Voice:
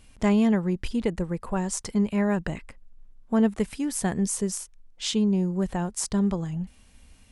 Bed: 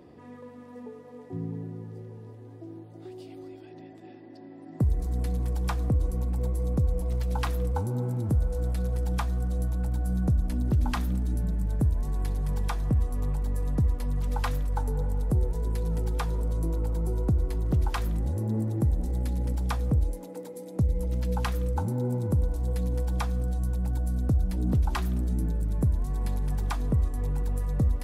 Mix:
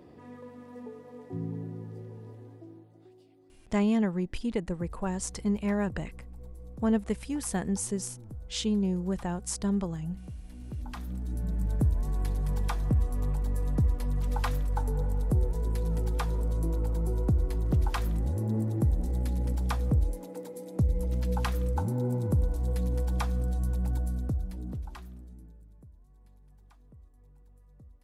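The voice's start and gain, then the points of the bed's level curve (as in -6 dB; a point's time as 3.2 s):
3.50 s, -4.5 dB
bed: 2.4 s -1 dB
3.38 s -18 dB
10.47 s -18 dB
11.64 s -1 dB
23.96 s -1 dB
25.91 s -29.5 dB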